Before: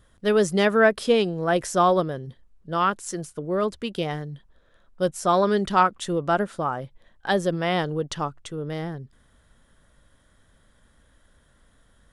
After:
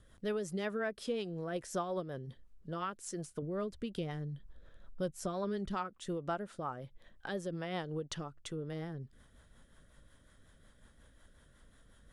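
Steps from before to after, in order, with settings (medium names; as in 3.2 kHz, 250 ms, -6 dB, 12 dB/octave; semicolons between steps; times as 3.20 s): 3.42–5.75 s: bass shelf 160 Hz +9.5 dB; compression 2.5:1, threshold -38 dBFS, peak gain reduction 16.5 dB; rotary cabinet horn 5.5 Hz; trim -1 dB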